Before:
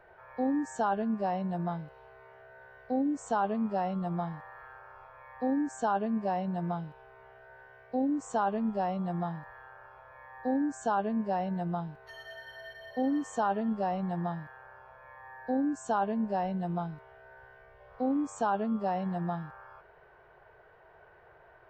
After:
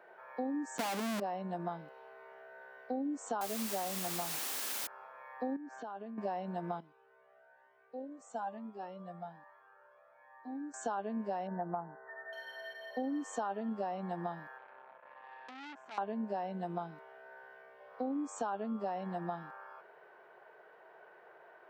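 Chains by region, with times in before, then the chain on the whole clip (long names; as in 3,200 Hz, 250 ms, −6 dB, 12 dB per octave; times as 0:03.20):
0:00.78–0:01.20: low-shelf EQ 160 Hz +12 dB + comparator with hysteresis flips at −41 dBFS
0:03.41–0:04.87: Chebyshev low-pass filter 2,700 Hz, order 8 + bit-depth reduction 6 bits, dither triangular
0:05.56–0:06.18: low-pass filter 4,500 Hz 24 dB per octave + downward compressor, threshold −41 dBFS
0:06.80–0:10.74: low-shelf EQ 400 Hz +3.5 dB + tuned comb filter 590 Hz, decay 0.47 s + flanger whose copies keep moving one way rising 1.1 Hz
0:11.47–0:12.33: linear-phase brick-wall low-pass 2,000 Hz + dynamic equaliser 830 Hz, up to +5 dB, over −47 dBFS, Q 1.7
0:14.58–0:15.98: low-pass filter 1,500 Hz + downward compressor 10 to 1, threshold −37 dBFS + saturating transformer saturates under 3,000 Hz
whole clip: high-pass filter 220 Hz 24 dB per octave; downward compressor 4 to 1, threshold −34 dBFS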